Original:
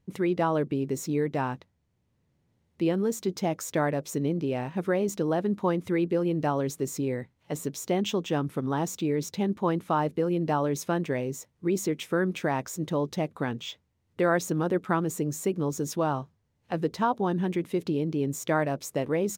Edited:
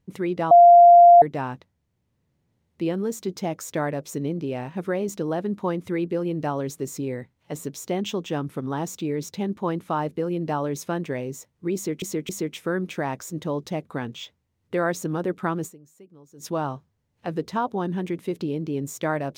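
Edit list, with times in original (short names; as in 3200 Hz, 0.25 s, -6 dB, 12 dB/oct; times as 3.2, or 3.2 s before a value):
0.51–1.22 bleep 695 Hz -7 dBFS
11.75–12.02 loop, 3 plays
15.12–15.91 dip -22 dB, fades 0.33 s exponential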